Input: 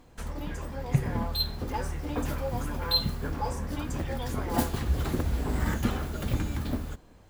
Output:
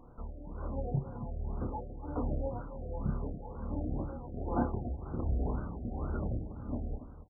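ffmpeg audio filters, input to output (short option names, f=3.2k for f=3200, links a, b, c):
-af "acompressor=threshold=-36dB:ratio=1.5,tremolo=f=1.3:d=0.74,aecho=1:1:29.15|282.8:0.708|0.282,afftfilt=real='re*lt(b*sr/1024,740*pow(1600/740,0.5+0.5*sin(2*PI*2*pts/sr)))':imag='im*lt(b*sr/1024,740*pow(1600/740,0.5+0.5*sin(2*PI*2*pts/sr)))':win_size=1024:overlap=0.75"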